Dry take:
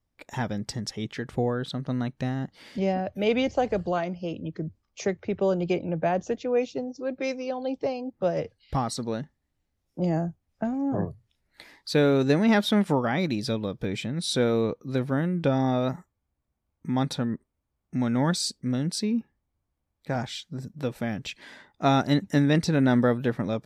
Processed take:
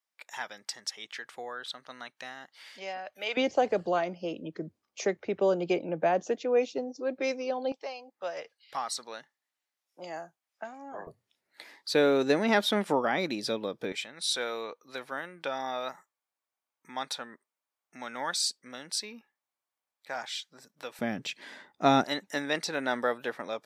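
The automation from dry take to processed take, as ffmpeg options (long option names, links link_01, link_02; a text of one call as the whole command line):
ffmpeg -i in.wav -af "asetnsamples=nb_out_samples=441:pad=0,asendcmd='3.37 highpass f 300;7.72 highpass f 990;11.07 highpass f 350;13.92 highpass f 890;20.99 highpass f 220;22.04 highpass f 640',highpass=1100" out.wav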